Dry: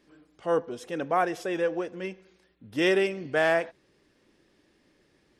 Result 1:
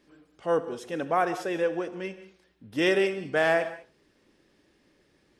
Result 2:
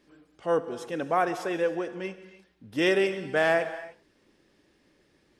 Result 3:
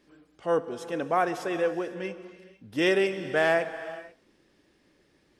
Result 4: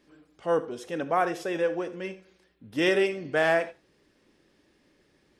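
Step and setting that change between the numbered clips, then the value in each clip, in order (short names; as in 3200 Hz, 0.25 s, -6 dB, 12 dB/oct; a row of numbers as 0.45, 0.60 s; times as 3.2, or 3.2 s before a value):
non-linear reverb, gate: 0.23, 0.34, 0.52, 0.11 s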